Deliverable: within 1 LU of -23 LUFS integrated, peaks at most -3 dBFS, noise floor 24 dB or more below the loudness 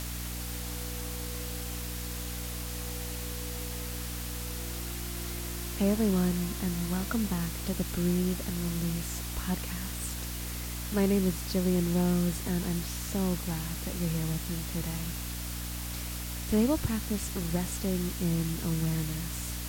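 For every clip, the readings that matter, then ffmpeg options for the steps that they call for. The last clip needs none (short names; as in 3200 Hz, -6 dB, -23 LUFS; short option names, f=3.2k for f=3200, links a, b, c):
hum 60 Hz; harmonics up to 300 Hz; hum level -36 dBFS; noise floor -37 dBFS; noise floor target -56 dBFS; loudness -32.0 LUFS; peak -14.0 dBFS; loudness target -23.0 LUFS
-> -af "bandreject=f=60:t=h:w=4,bandreject=f=120:t=h:w=4,bandreject=f=180:t=h:w=4,bandreject=f=240:t=h:w=4,bandreject=f=300:t=h:w=4"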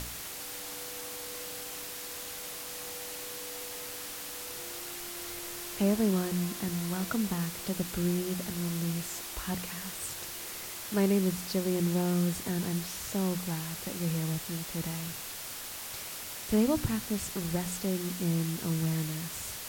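hum none; noise floor -41 dBFS; noise floor target -57 dBFS
-> -af "afftdn=nr=16:nf=-41"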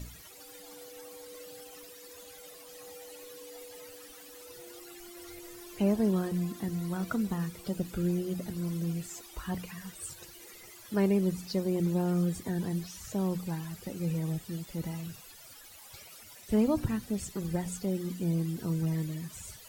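noise floor -51 dBFS; noise floor target -57 dBFS
-> -af "afftdn=nr=6:nf=-51"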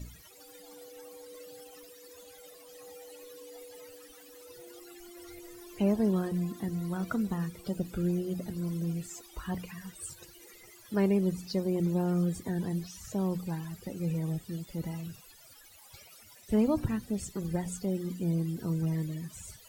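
noise floor -55 dBFS; noise floor target -57 dBFS
-> -af "afftdn=nr=6:nf=-55"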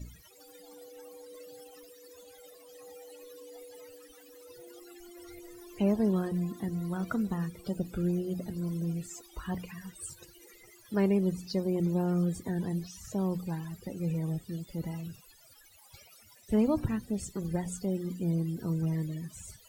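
noise floor -58 dBFS; loudness -32.5 LUFS; peak -15.0 dBFS; loudness target -23.0 LUFS
-> -af "volume=9.5dB"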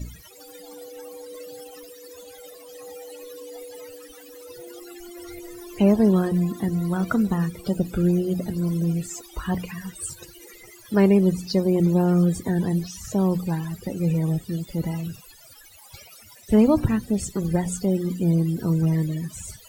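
loudness -23.0 LUFS; peak -5.5 dBFS; noise floor -48 dBFS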